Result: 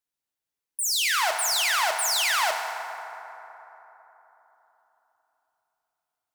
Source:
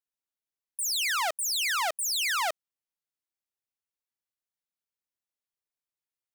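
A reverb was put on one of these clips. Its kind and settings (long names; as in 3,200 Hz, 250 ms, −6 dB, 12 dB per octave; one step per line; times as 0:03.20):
feedback delay network reverb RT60 3.8 s, high-frequency decay 0.4×, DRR 2.5 dB
level +3 dB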